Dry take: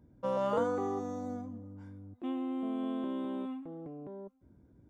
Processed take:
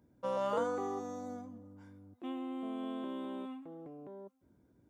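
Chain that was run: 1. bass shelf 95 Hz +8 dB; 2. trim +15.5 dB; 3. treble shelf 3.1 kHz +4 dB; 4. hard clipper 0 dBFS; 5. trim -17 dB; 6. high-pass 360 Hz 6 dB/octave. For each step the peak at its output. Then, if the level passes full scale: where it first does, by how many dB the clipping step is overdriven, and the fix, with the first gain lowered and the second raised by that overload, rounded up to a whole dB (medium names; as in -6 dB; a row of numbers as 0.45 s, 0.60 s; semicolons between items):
-19.5 dBFS, -4.0 dBFS, -3.5 dBFS, -3.5 dBFS, -20.5 dBFS, -21.0 dBFS; nothing clips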